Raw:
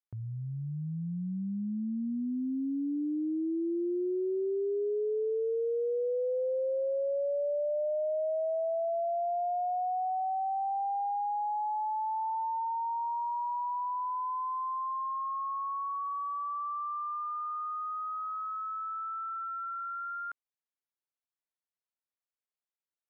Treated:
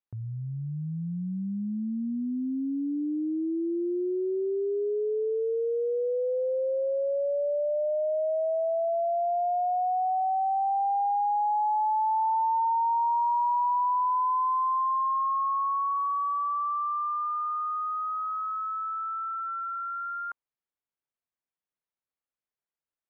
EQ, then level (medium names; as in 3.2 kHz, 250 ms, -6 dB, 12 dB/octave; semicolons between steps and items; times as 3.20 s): dynamic bell 1 kHz, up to +7 dB, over -49 dBFS, Q 1.7; distance through air 380 m; +3.0 dB